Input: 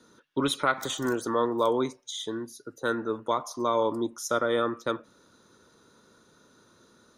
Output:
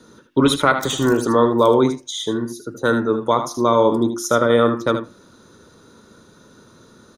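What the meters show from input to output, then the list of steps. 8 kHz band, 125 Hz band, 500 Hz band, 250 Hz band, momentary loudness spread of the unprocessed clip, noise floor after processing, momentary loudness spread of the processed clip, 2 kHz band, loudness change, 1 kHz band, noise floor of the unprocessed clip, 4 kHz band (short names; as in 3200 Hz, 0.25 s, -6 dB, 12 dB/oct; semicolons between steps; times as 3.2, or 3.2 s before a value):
+8.5 dB, +15.0 dB, +11.0 dB, +12.5 dB, 10 LU, -50 dBFS, 9 LU, +9.0 dB, +10.5 dB, +9.0 dB, -61 dBFS, +8.5 dB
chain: low shelf 320 Hz +8 dB; notches 50/100/150/200/250/300/350 Hz; on a send: echo 77 ms -9 dB; on the sum: gain +8 dB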